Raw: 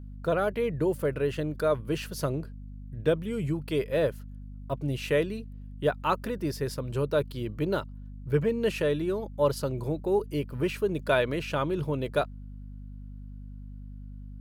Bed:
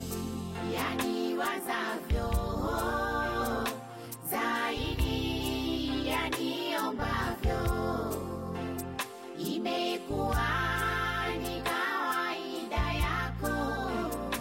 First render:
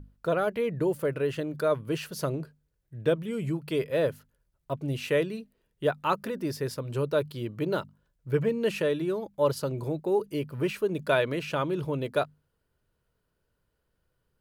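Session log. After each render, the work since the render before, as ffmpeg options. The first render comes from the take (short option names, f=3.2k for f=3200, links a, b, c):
-af "bandreject=f=50:t=h:w=6,bandreject=f=100:t=h:w=6,bandreject=f=150:t=h:w=6,bandreject=f=200:t=h:w=6,bandreject=f=250:t=h:w=6"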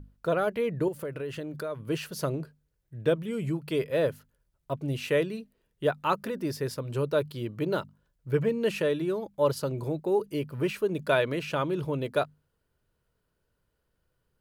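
-filter_complex "[0:a]asettb=1/sr,asplit=3[a][b][c];[a]atrim=end=0.884[d];[b]atrim=start=0.88:end=1.83,asetpts=PTS-STARTPTS,afade=t=in:d=0.004:c=qsin,afade=t=out:st=0.946:d=0.004:c=qsin,acompressor=threshold=-33dB:ratio=3:attack=3.2:release=140:knee=1:detection=peak[e];[c]atrim=start=1.826[f];[d][e]acrossfade=d=0.004:c1=hsin:c2=qsin[g];[g][f]acrossfade=d=0.004:c1=qsin:c2=hsin"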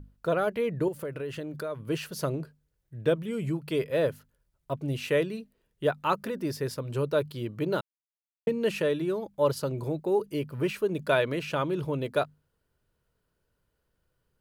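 -filter_complex "[0:a]asplit=3[a][b][c];[a]atrim=end=7.81,asetpts=PTS-STARTPTS,afade=t=out:st=7.806:d=0.004:c=hsin[d];[b]atrim=start=7.81:end=8.47,asetpts=PTS-STARTPTS,volume=0[e];[c]atrim=start=8.47,asetpts=PTS-STARTPTS,afade=t=in:d=0.004:c=hsin[f];[d][e][f]concat=n=3:v=0:a=1"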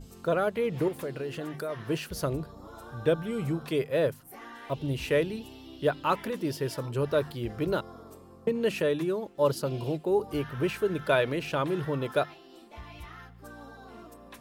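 -filter_complex "[1:a]volume=-15dB[a];[0:a][a]amix=inputs=2:normalize=0"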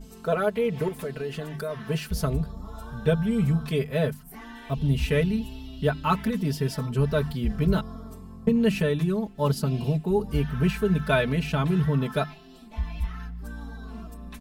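-af "aecho=1:1:4.6:0.92,asubboost=boost=8:cutoff=150"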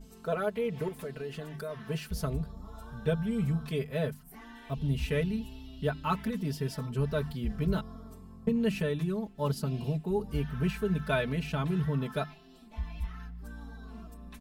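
-af "volume=-6.5dB"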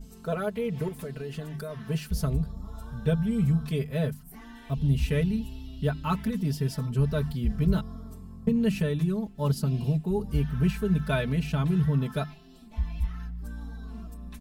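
-af "bass=f=250:g=7,treble=f=4k:g=4"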